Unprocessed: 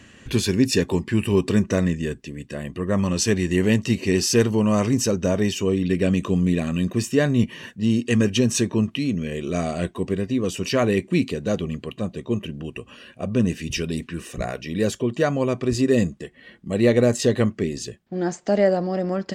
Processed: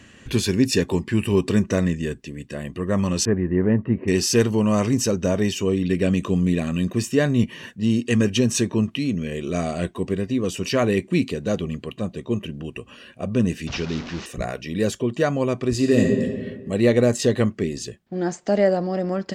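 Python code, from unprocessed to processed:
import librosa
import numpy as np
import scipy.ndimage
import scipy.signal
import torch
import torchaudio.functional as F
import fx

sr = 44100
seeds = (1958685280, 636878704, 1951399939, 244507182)

y = fx.cheby2_lowpass(x, sr, hz=8300.0, order=4, stop_db=80, at=(3.25, 4.08))
y = fx.delta_mod(y, sr, bps=32000, step_db=-29.0, at=(13.67, 14.26))
y = fx.reverb_throw(y, sr, start_s=15.76, length_s=0.48, rt60_s=1.6, drr_db=1.0)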